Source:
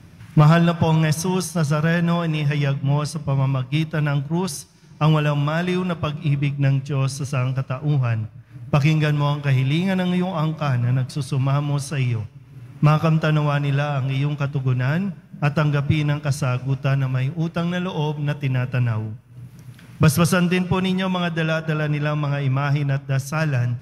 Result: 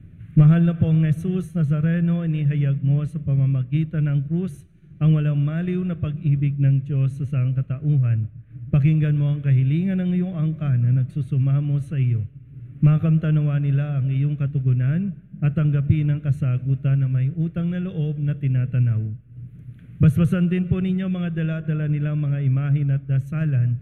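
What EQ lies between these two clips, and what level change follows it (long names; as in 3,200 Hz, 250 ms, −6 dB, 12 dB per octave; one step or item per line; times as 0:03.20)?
spectral tilt −3 dB per octave
phaser with its sweep stopped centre 2,200 Hz, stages 4
−7.0 dB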